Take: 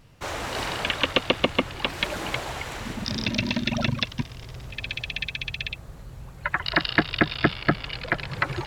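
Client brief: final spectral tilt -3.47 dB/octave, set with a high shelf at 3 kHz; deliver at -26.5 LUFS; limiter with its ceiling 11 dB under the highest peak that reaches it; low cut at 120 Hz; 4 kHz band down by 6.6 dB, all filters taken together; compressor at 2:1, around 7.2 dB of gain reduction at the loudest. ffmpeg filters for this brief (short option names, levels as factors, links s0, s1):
-af "highpass=120,highshelf=f=3000:g=-5.5,equalizer=f=4000:t=o:g=-5,acompressor=threshold=0.0316:ratio=2,volume=3.16,alimiter=limit=0.224:level=0:latency=1"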